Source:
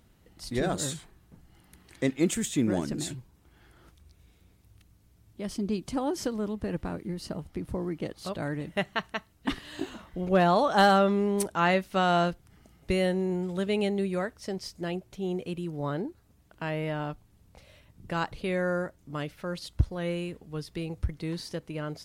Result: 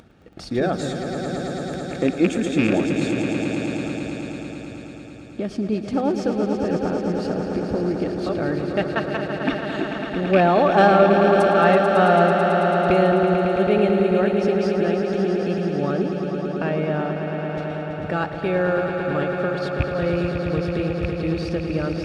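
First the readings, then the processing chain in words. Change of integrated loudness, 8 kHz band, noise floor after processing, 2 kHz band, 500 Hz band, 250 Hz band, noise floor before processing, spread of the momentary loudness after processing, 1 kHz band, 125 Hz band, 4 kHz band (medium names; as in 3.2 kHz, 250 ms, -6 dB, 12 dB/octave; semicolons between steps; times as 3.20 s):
+8.5 dB, no reading, -36 dBFS, +8.5 dB, +11.0 dB, +9.0 dB, -62 dBFS, 12 LU, +8.5 dB, +8.0 dB, +3.0 dB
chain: rattle on loud lows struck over -25 dBFS, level -16 dBFS; gate -53 dBFS, range -21 dB; bass shelf 200 Hz -5.5 dB; upward compressor, threshold -30 dBFS; waveshaping leveller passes 1; tape spacing loss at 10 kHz 22 dB; comb of notches 1 kHz; echo with a slow build-up 110 ms, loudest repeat 5, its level -9 dB; trim +6 dB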